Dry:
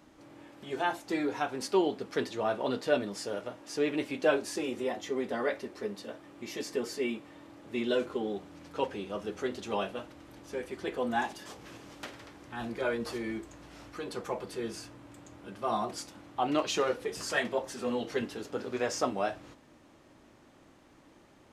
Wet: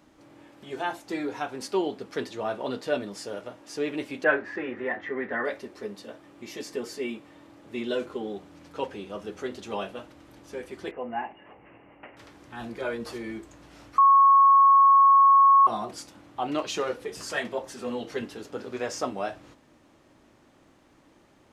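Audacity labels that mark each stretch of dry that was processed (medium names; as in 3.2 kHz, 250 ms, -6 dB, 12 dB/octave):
4.240000	5.450000	resonant low-pass 1.8 kHz, resonance Q 5.9
10.910000	12.170000	rippled Chebyshev low-pass 2.9 kHz, ripple 6 dB
13.980000	15.670000	bleep 1.1 kHz -13 dBFS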